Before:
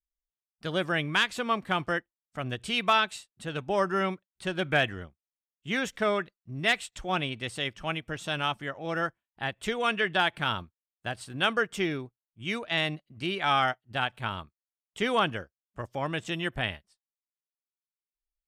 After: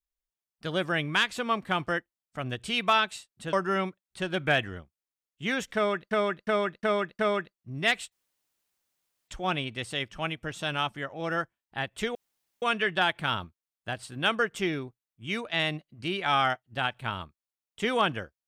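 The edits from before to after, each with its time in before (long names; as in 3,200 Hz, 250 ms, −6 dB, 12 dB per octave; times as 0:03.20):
0:03.53–0:03.78: remove
0:06.00–0:06.36: repeat, 5 plays
0:06.93: splice in room tone 1.16 s
0:09.80: splice in room tone 0.47 s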